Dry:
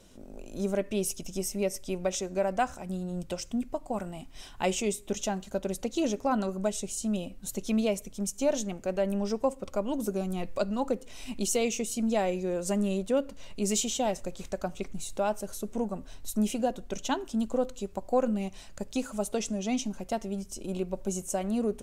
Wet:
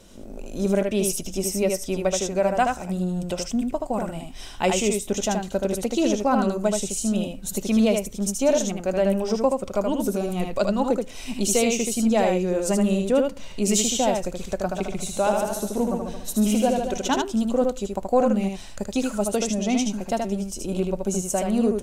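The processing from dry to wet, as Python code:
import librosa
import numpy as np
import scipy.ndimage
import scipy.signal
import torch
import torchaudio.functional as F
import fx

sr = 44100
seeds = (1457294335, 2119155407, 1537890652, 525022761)

y = x + 10.0 ** (-4.0 / 20.0) * np.pad(x, (int(77 * sr / 1000.0), 0))[:len(x)]
y = fx.echo_warbled(y, sr, ms=142, feedback_pct=32, rate_hz=2.8, cents=66, wet_db=-6.0, at=(14.62, 17.22))
y = y * 10.0 ** (6.0 / 20.0)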